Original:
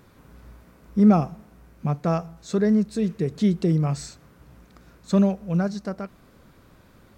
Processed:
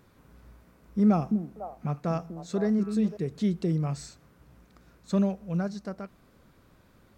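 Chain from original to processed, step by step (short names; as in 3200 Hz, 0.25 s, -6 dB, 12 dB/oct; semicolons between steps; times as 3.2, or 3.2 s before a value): 1.06–3.17 delay with a stepping band-pass 0.25 s, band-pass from 260 Hz, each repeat 1.4 oct, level -4 dB; gain -6 dB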